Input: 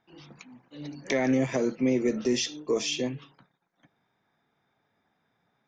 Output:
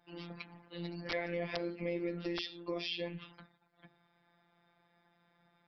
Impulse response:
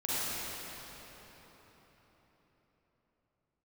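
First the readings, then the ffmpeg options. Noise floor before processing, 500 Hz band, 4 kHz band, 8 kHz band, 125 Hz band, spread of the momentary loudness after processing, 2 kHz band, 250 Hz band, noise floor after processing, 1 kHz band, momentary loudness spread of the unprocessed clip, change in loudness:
−76 dBFS, −10.5 dB, −7.5 dB, −29.5 dB, −8.0 dB, 11 LU, −6.5 dB, −13.5 dB, −73 dBFS, −7.5 dB, 16 LU, −12.0 dB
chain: -af "afftfilt=real='hypot(re,im)*cos(PI*b)':imag='0':win_size=1024:overlap=0.75,adynamicequalizer=threshold=0.00501:dfrequency=2400:dqfactor=0.82:tfrequency=2400:tqfactor=0.82:attack=5:release=100:ratio=0.375:range=2:mode=boostabove:tftype=bell,acompressor=threshold=-43dB:ratio=3,bandreject=frequency=50:width_type=h:width=6,bandreject=frequency=100:width_type=h:width=6,bandreject=frequency=150:width_type=h:width=6,bandreject=frequency=200:width_type=h:width=6,bandreject=frequency=250:width_type=h:width=6,bandreject=frequency=300:width_type=h:width=6,bandreject=frequency=350:width_type=h:width=6,bandreject=frequency=400:width_type=h:width=6,bandreject=frequency=450:width_type=h:width=6,bandreject=frequency=500:width_type=h:width=6,aresample=11025,aeval=exprs='(mod(26.6*val(0)+1,2)-1)/26.6':channel_layout=same,aresample=44100,volume=6dB"

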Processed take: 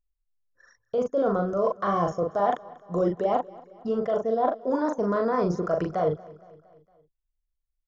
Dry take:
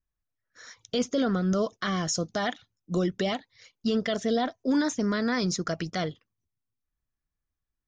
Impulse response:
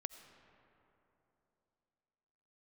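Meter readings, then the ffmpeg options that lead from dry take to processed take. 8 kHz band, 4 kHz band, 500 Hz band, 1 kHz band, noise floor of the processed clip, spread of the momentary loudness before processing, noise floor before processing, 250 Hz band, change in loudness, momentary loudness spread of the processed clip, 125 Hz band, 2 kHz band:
below −15 dB, below −15 dB, +6.0 dB, +7.5 dB, −80 dBFS, 7 LU, below −85 dBFS, −2.5 dB, +2.0 dB, 6 LU, −1.5 dB, −6.0 dB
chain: -filter_complex "[0:a]acrossover=split=2800[link_01][link_02];[link_02]acompressor=threshold=-45dB:ratio=4:attack=1:release=60[link_03];[link_01][link_03]amix=inputs=2:normalize=0,anlmdn=0.398,equalizer=frequency=250:width_type=o:width=1:gain=-5,equalizer=frequency=500:width_type=o:width=1:gain=9,equalizer=frequency=1000:width_type=o:width=1:gain=11,equalizer=frequency=2000:width_type=o:width=1:gain=-10,equalizer=frequency=4000:width_type=o:width=1:gain=-10,areverse,acompressor=threshold=-30dB:ratio=10,areverse,asplit=2[link_04][link_05];[link_05]adelay=40,volume=-4dB[link_06];[link_04][link_06]amix=inputs=2:normalize=0,aecho=1:1:231|462|693|924:0.0841|0.0463|0.0255|0.014,volume=7.5dB"

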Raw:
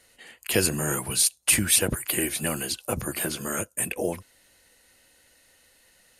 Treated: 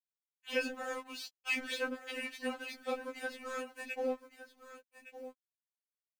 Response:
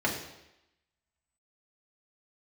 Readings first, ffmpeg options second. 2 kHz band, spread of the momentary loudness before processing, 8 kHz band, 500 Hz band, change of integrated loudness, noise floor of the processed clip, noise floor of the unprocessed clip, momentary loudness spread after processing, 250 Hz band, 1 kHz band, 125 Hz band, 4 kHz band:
−6.5 dB, 10 LU, −29.0 dB, −7.5 dB, −14.0 dB, below −85 dBFS, −61 dBFS, 18 LU, −12.5 dB, −7.0 dB, below −40 dB, −14.0 dB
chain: -filter_complex "[0:a]lowpass=frequency=7200:width=0.5412,lowpass=frequency=7200:width=1.3066,afftdn=noise_reduction=15:noise_floor=-38,highpass=frequency=460:poles=1,highshelf=frequency=3100:gain=-9.5,acrossover=split=4200[link_01][link_02];[link_02]acompressor=threshold=-50dB:ratio=6[link_03];[link_01][link_03]amix=inputs=2:normalize=0,aeval=exprs='sgn(val(0))*max(abs(val(0))-0.00596,0)':channel_layout=same,asplit=2[link_04][link_05];[link_05]aecho=0:1:1163:0.224[link_06];[link_04][link_06]amix=inputs=2:normalize=0,acrusher=bits=10:mix=0:aa=0.000001,afftfilt=real='re*3.46*eq(mod(b,12),0)':imag='im*3.46*eq(mod(b,12),0)':win_size=2048:overlap=0.75"

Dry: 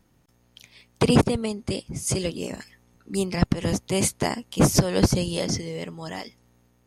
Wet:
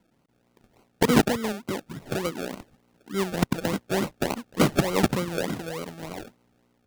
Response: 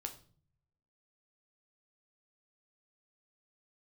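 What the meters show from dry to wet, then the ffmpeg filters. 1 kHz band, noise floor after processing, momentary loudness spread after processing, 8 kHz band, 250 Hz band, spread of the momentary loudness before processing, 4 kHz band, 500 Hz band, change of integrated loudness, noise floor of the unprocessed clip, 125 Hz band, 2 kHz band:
+1.5 dB, −68 dBFS, 15 LU, −8.0 dB, −2.0 dB, 15 LU, −3.0 dB, −1.0 dB, −2.0 dB, −63 dBFS, −5.5 dB, +2.5 dB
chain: -filter_complex "[0:a]acrossover=split=160 2200:gain=0.178 1 0.141[link_01][link_02][link_03];[link_01][link_02][link_03]amix=inputs=3:normalize=0,acrusher=samples=35:mix=1:aa=0.000001:lfo=1:lforange=21:lforate=3.4"

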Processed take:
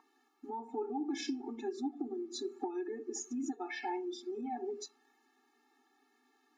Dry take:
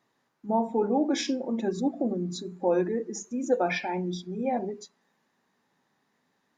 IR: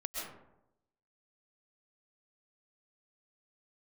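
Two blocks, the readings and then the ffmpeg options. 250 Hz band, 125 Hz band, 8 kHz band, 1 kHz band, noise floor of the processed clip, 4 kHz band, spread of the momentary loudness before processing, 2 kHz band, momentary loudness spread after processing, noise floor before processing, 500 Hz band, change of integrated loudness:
−10.0 dB, below −30 dB, −5.0 dB, −9.5 dB, −74 dBFS, −8.5 dB, 8 LU, −10.5 dB, 6 LU, −74 dBFS, −12.0 dB, −11.0 dB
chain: -af "acompressor=threshold=-36dB:ratio=10,aeval=exprs='val(0)+0.00398*sin(2*PI*1000*n/s)':channel_layout=same,afftfilt=real='re*eq(mod(floor(b*sr/1024/230),2),1)':imag='im*eq(mod(floor(b*sr/1024/230),2),1)':win_size=1024:overlap=0.75,volume=4dB"

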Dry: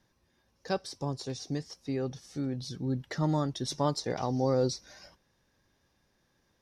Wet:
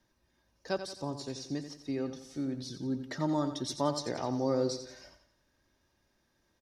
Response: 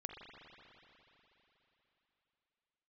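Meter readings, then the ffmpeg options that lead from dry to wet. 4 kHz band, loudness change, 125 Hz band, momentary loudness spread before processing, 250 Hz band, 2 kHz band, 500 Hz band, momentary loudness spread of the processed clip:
−2.0 dB, −2.0 dB, −7.0 dB, 9 LU, −0.5 dB, −1.5 dB, −2.0 dB, 8 LU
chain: -filter_complex "[0:a]aecho=1:1:3.2:0.32,acrossover=split=100[link_01][link_02];[link_01]acompressor=threshold=-60dB:ratio=6[link_03];[link_03][link_02]amix=inputs=2:normalize=0,aecho=1:1:88|176|264|352|440:0.316|0.136|0.0585|0.0251|0.0108,volume=-2.5dB"

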